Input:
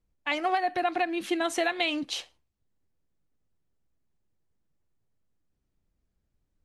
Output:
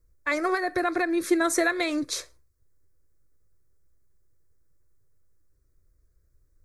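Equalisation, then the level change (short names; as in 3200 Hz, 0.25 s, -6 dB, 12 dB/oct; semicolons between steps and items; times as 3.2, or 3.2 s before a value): low shelf 310 Hz +7.5 dB; high shelf 3800 Hz +6.5 dB; fixed phaser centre 800 Hz, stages 6; +5.5 dB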